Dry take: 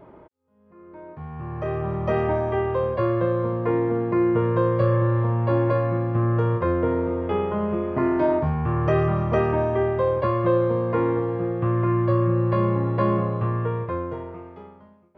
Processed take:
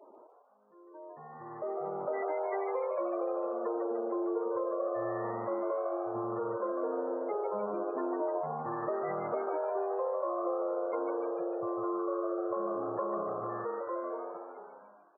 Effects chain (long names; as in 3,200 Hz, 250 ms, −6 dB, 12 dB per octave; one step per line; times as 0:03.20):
high-pass filter 420 Hz 12 dB per octave
gate on every frequency bin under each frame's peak −15 dB strong
high shelf with overshoot 1,800 Hz +6 dB, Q 3
downward compressor, threshold −27 dBFS, peak gain reduction 7.5 dB
echo with shifted repeats 150 ms, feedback 51%, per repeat +95 Hz, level −6 dB
level −4 dB